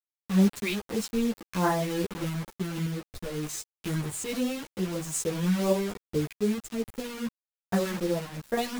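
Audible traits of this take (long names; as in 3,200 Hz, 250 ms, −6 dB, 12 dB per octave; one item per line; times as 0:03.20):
phaser sweep stages 2, 2.5 Hz, lowest notch 660–4,400 Hz
a quantiser's noise floor 6 bits, dither none
sample-and-hold tremolo
a shimmering, thickened sound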